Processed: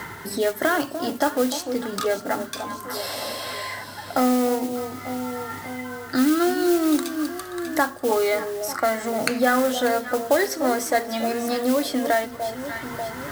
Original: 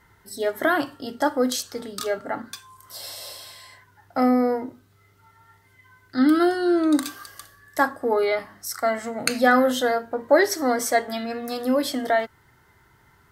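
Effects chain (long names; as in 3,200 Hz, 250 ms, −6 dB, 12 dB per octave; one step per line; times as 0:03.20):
reversed playback
upward compression, threshold −37 dBFS
reversed playback
delay that swaps between a low-pass and a high-pass 296 ms, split 1,000 Hz, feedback 59%, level −12 dB
noise that follows the level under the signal 16 dB
multiband upward and downward compressor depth 70%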